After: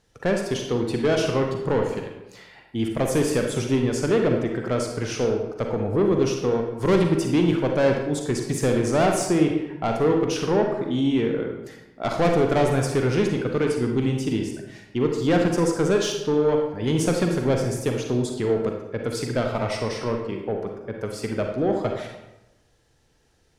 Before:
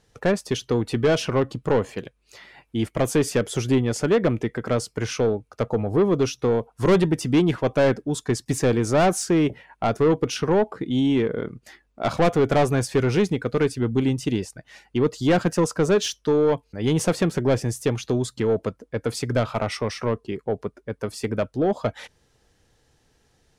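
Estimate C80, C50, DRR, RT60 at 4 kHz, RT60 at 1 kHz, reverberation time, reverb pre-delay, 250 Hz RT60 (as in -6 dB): 6.5 dB, 3.5 dB, 2.0 dB, 0.65 s, 0.95 s, 1.0 s, 37 ms, 1.0 s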